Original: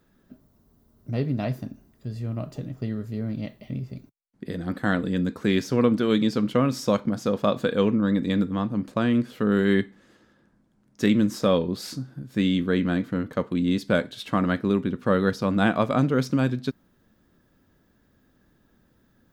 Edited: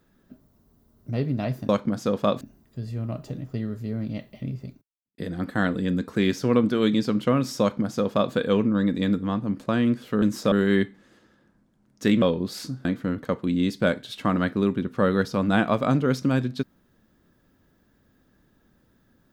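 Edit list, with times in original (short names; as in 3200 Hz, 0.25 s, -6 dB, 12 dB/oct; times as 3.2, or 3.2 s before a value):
3.94–4.46 fade out quadratic
6.89–7.61 copy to 1.69
11.2–11.5 move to 9.5
12.13–12.93 cut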